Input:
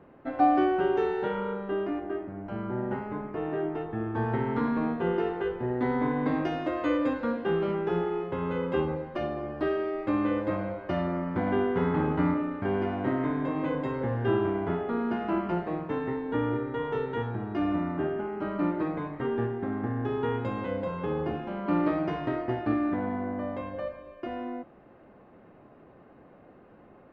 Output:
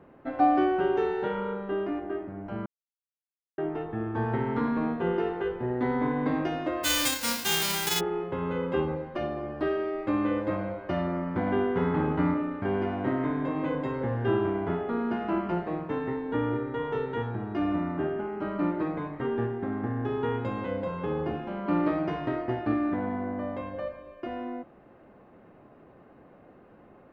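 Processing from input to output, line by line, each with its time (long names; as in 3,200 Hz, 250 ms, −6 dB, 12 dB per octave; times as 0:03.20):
0:02.66–0:03.58: silence
0:06.83–0:07.99: spectral envelope flattened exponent 0.1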